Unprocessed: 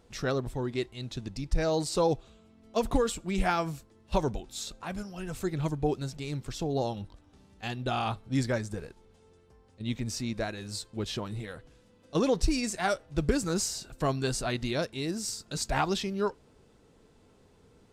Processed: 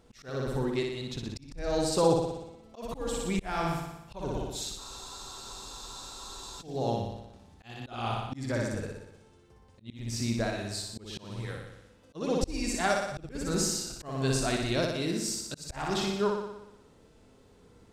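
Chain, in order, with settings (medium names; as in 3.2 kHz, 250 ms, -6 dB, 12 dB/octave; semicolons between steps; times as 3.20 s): flutter echo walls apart 10.3 m, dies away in 0.91 s; slow attack 312 ms; spectral freeze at 4.80 s, 1.81 s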